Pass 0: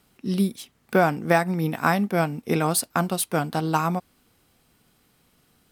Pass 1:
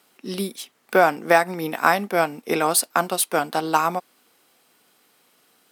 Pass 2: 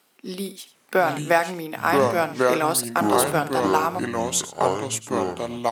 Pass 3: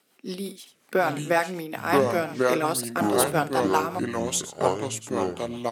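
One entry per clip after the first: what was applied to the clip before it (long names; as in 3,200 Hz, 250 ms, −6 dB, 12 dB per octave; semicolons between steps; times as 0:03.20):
high-pass filter 380 Hz 12 dB per octave; level +4.5 dB
single-tap delay 80 ms −15 dB; delay with pitch and tempo change per echo 659 ms, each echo −5 semitones, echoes 2; amplitude modulation by smooth noise, depth 55%
rotating-speaker cabinet horn 5.5 Hz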